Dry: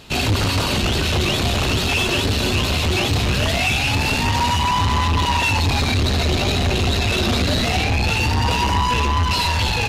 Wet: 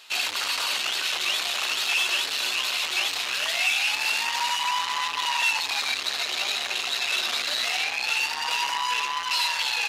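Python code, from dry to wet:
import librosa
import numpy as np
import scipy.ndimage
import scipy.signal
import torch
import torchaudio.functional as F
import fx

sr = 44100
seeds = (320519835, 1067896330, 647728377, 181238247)

y = scipy.signal.sosfilt(scipy.signal.butter(2, 1200.0, 'highpass', fs=sr, output='sos'), x)
y = y * librosa.db_to_amplitude(-2.5)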